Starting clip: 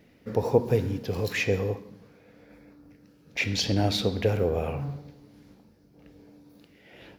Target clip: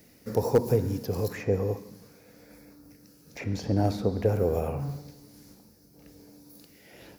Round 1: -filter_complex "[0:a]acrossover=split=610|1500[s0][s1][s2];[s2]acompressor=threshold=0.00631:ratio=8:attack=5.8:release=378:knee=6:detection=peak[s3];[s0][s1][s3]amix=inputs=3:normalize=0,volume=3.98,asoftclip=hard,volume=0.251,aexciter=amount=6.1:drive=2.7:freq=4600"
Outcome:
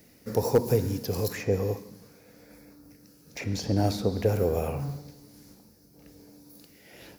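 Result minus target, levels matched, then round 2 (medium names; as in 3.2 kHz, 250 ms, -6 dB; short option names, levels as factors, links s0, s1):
compression: peak gain reduction -7.5 dB
-filter_complex "[0:a]acrossover=split=610|1500[s0][s1][s2];[s2]acompressor=threshold=0.00237:ratio=8:attack=5.8:release=378:knee=6:detection=peak[s3];[s0][s1][s3]amix=inputs=3:normalize=0,volume=3.98,asoftclip=hard,volume=0.251,aexciter=amount=6.1:drive=2.7:freq=4600"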